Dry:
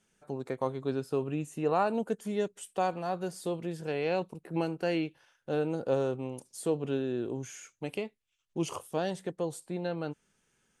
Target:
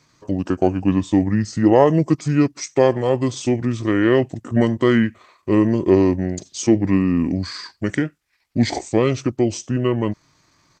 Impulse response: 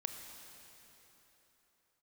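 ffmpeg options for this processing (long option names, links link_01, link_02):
-af "highpass=frequency=55:poles=1,acontrast=72,asetrate=31183,aresample=44100,atempo=1.41421,volume=8dB"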